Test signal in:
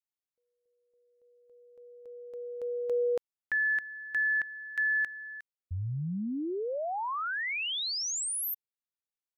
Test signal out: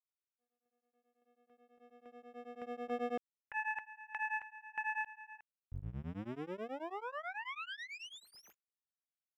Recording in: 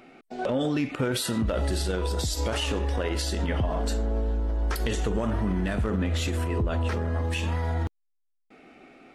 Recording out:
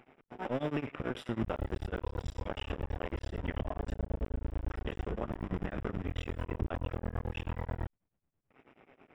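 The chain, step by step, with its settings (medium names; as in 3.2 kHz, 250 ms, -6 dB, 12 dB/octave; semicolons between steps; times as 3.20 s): cycle switcher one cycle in 2, muted; Savitzky-Golay filter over 25 samples; tremolo of two beating tones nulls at 9.2 Hz; trim -4 dB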